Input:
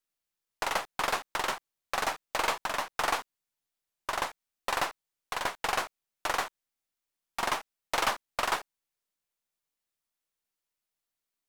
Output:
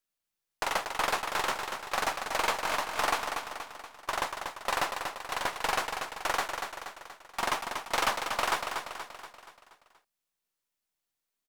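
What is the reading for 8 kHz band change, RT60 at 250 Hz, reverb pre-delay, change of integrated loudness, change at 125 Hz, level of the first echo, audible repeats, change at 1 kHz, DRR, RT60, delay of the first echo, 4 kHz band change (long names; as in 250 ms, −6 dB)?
+1.5 dB, no reverb audible, no reverb audible, +0.5 dB, +1.0 dB, −6.0 dB, 6, +1.5 dB, no reverb audible, no reverb audible, 238 ms, +1.5 dB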